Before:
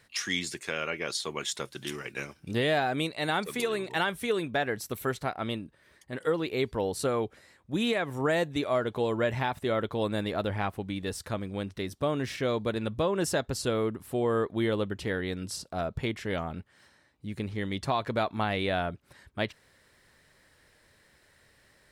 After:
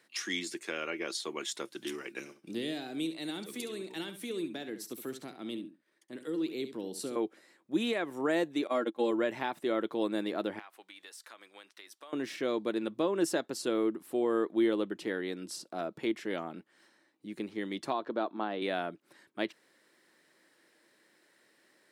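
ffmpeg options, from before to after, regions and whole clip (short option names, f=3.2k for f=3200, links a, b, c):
-filter_complex "[0:a]asettb=1/sr,asplit=3[a][b][c];[a]atrim=end=2.194[d];[b]atrim=start=2.19:end=7.16,asetpts=PTS-STARTPTS,afade=t=in:d=0.004:c=qsin,afade=t=out:st=4.966:d=0.004:c=qsin,agate=range=-33dB:threshold=-54dB:ratio=3:release=100:detection=peak,acrossover=split=340|3000[e][f][g];[f]acompressor=threshold=-50dB:ratio=2.5:attack=3.2:release=140:knee=2.83:detection=peak[h];[e][h][g]amix=inputs=3:normalize=0,aecho=1:1:68|136:0.282|0.0451,atrim=end_sample=219177[i];[c]atrim=start=7.156[j];[d][i]acrossfade=d=0.004:c1=hsin:c2=qsin[k];[k][j]acrossfade=d=0.004:c1=qsin:c2=hsin,asettb=1/sr,asplit=3[l][m][n];[l]atrim=end=8.674[o];[m]atrim=start=8.67:end=9.11,asetpts=PTS-STARTPTS,afade=t=in:d=0.004:c=qsin,afade=t=out:st=0.436:d=0.004:c=qsin,agate=range=-17dB:threshold=-32dB:ratio=16:release=100:detection=peak,aecho=1:1:3.7:0.71,atrim=end_sample=19404[p];[n]atrim=start=9.106[q];[o][p]acrossfade=d=0.004:c1=hsin:c2=qsin[r];[r][q]acrossfade=d=0.004:c1=qsin:c2=hsin,asettb=1/sr,asplit=3[s][t][u];[s]atrim=end=10.594[v];[t]atrim=start=10.59:end=12.13,asetpts=PTS-STARTPTS,afade=t=in:d=0.004:c=qsin,afade=t=out:st=1.536:d=0.004:c=qsin,highpass=1.1k,acompressor=threshold=-41dB:ratio=6:attack=3.2:release=140:knee=1:detection=peak[w];[u]atrim=start=12.126[x];[v][w]acrossfade=d=0.004:c1=hsin:c2=qsin[y];[y][x]acrossfade=d=0.004:c1=qsin:c2=hsin,asettb=1/sr,asplit=3[z][aa][ab];[z]atrim=end=17.934[ac];[aa]atrim=start=17.93:end=18.62,asetpts=PTS-STARTPTS,afade=t=in:d=0.004:c=qsin,afade=t=out:st=0.686:d=0.004:c=qsin,highpass=190,lowpass=3.2k,equalizer=f=2.2k:t=o:w=0.64:g=-10.5[ad];[ab]atrim=start=18.616[ae];[ac][ad]acrossfade=d=0.004:c1=hsin:c2=qsin[af];[af][ae]acrossfade=d=0.004:c1=qsin:c2=hsin,highpass=f=200:w=0.5412,highpass=f=200:w=1.3066,equalizer=f=330:w=5.1:g=10,volume=-4.5dB"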